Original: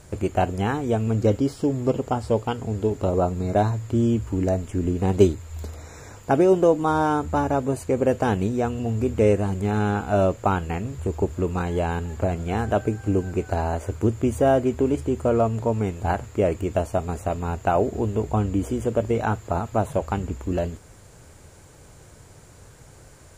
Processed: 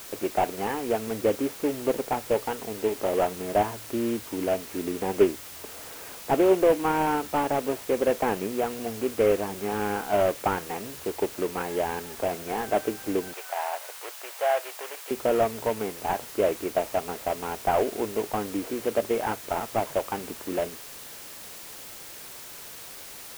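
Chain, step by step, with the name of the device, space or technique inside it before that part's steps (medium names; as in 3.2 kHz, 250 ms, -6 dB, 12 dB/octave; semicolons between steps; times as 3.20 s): army field radio (band-pass 340–3000 Hz; CVSD coder 16 kbps; white noise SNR 15 dB); 13.33–15.11 s: inverse Chebyshev high-pass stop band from 190 Hz, stop band 60 dB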